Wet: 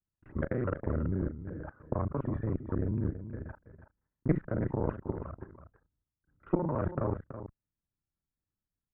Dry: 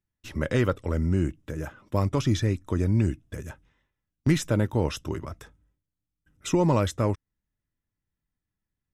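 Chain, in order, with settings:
reversed piece by piece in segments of 32 ms
Butterworth low-pass 1,600 Hz 36 dB per octave
output level in coarse steps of 10 dB
harmonic generator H 2 −9 dB, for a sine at −12.5 dBFS
single-tap delay 328 ms −11 dB
level −1.5 dB

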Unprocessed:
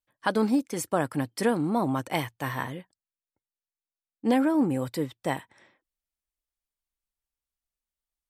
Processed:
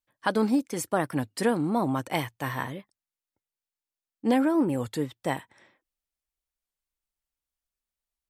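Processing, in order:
wow of a warped record 33 1/3 rpm, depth 160 cents

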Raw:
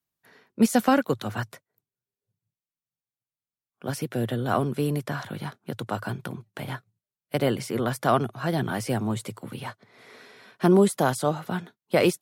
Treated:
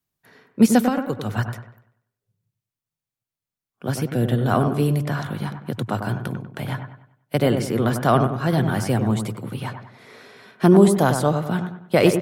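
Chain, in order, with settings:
0:00.86–0:01.38: downward compressor 2.5 to 1, threshold −28 dBFS, peak gain reduction 9.5 dB
low-shelf EQ 170 Hz +7 dB
delay with a low-pass on its return 97 ms, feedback 38%, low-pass 1,900 Hz, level −7 dB
level +3 dB

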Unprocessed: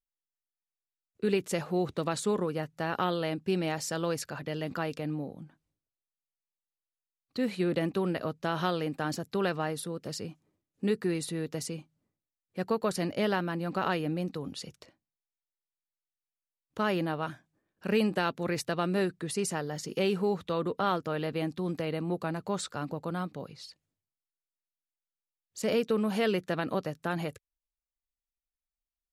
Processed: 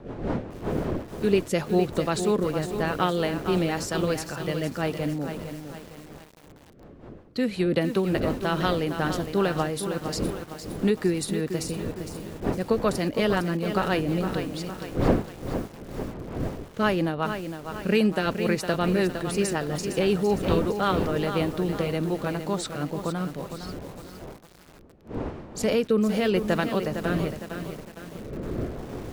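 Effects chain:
wind on the microphone 440 Hz −41 dBFS
rotating-speaker cabinet horn 5.5 Hz, later 0.8 Hz, at 0:22.78
feedback echo at a low word length 459 ms, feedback 55%, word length 8 bits, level −8 dB
level +7 dB

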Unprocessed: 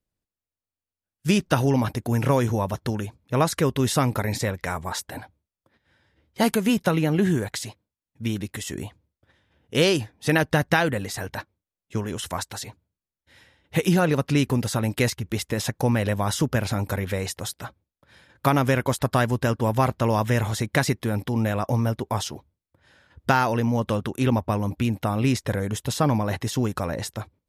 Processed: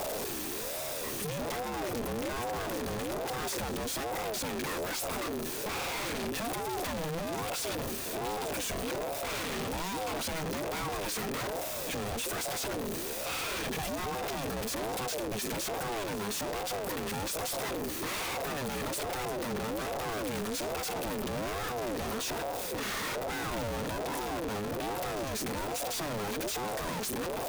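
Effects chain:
sign of each sample alone
EQ curve with evenly spaced ripples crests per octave 1.9, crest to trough 7 dB
soft clipping −27.5 dBFS, distortion −13 dB
echo ahead of the sound 195 ms −17 dB
ring modulator whose carrier an LFO sweeps 470 Hz, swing 35%, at 1.2 Hz
level −2.5 dB

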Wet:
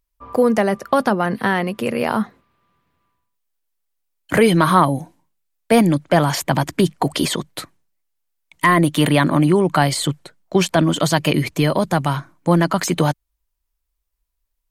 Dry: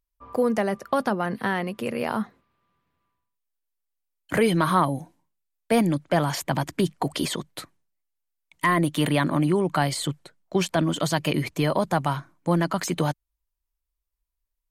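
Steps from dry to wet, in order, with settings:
0:11.34–0:12.14: dynamic equaliser 880 Hz, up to −4 dB, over −37 dBFS, Q 0.86
level +7 dB

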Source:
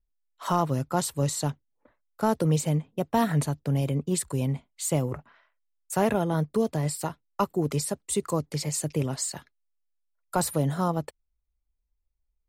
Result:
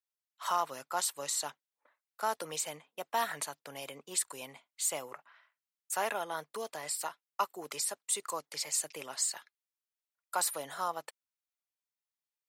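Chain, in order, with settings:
high-pass filter 950 Hz 12 dB per octave
level −1 dB

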